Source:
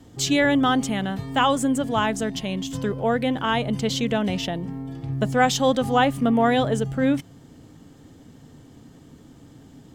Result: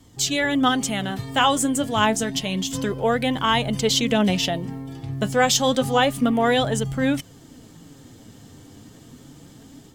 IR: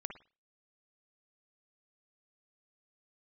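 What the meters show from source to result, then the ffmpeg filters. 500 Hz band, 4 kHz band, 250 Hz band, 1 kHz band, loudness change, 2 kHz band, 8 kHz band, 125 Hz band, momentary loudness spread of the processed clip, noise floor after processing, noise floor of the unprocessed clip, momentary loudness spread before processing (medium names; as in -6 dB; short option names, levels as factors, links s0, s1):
+0.5 dB, +5.0 dB, -0.5 dB, +0.5 dB, +1.5 dB, +1.5 dB, +6.5 dB, 0.0 dB, 7 LU, -48 dBFS, -49 dBFS, 9 LU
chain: -af "dynaudnorm=f=470:g=3:m=2,highshelf=f=2900:g=8.5,flanger=delay=0.9:depth=9.3:regen=55:speed=0.29:shape=sinusoidal"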